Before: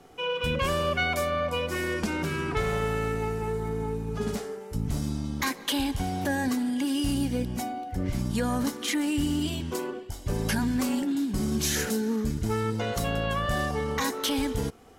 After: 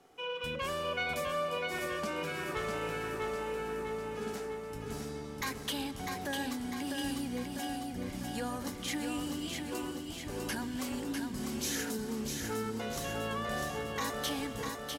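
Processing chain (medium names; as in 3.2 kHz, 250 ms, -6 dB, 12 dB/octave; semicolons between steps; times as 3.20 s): bass shelf 180 Hz -11 dB; on a send: feedback delay 650 ms, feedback 57%, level -4.5 dB; on the sum: trim -7.5 dB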